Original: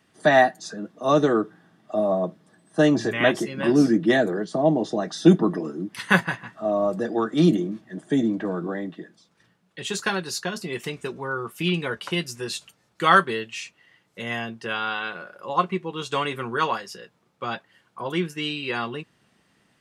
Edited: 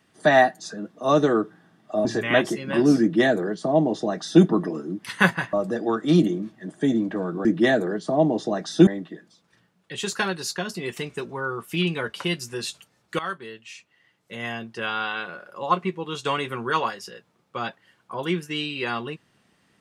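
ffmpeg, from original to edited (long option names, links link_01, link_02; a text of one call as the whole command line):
ffmpeg -i in.wav -filter_complex "[0:a]asplit=6[link_01][link_02][link_03][link_04][link_05][link_06];[link_01]atrim=end=2.052[link_07];[link_02]atrim=start=2.948:end=6.432[link_08];[link_03]atrim=start=6.818:end=8.742[link_09];[link_04]atrim=start=3.908:end=5.332[link_10];[link_05]atrim=start=8.738:end=13.06,asetpts=PTS-STARTPTS,afade=type=out:start_time=4.318:duration=0.004:curve=hsin:silence=0.133352[link_11];[link_06]atrim=start=13.06,asetpts=PTS-STARTPTS,afade=type=in:duration=1.7:silence=0.133352[link_12];[link_07][link_08]acrossfade=duration=0.004:curve1=hsin:curve2=hsin[link_13];[link_13][link_09]acrossfade=duration=0.004:curve1=hsin:curve2=hsin[link_14];[link_14][link_10]acrossfade=duration=0.004:curve1=hsin:curve2=hsin[link_15];[link_11][link_12]concat=n=2:v=0:a=1[link_16];[link_15][link_16]acrossfade=duration=0.004:curve1=hsin:curve2=hsin" out.wav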